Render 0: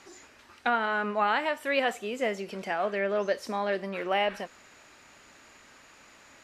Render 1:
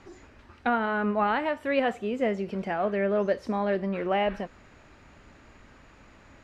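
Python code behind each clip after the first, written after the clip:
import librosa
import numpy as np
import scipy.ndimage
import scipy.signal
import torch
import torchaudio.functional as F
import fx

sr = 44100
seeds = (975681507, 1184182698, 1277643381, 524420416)

y = fx.riaa(x, sr, side='playback')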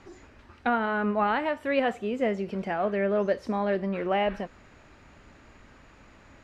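y = x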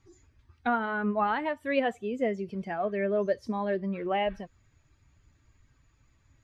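y = fx.bin_expand(x, sr, power=1.5)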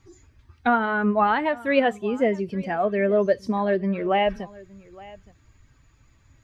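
y = x + 10.0 ** (-21.5 / 20.0) * np.pad(x, (int(867 * sr / 1000.0), 0))[:len(x)]
y = F.gain(torch.from_numpy(y), 7.0).numpy()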